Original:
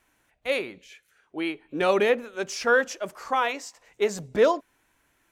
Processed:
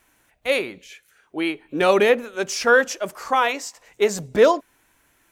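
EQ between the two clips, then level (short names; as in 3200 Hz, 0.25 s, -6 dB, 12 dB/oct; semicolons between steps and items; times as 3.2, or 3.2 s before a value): high shelf 8200 Hz +6 dB; +5.0 dB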